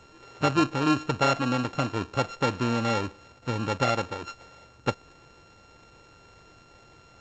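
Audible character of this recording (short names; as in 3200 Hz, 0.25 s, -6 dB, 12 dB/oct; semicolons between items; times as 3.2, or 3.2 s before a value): a buzz of ramps at a fixed pitch in blocks of 32 samples; G.722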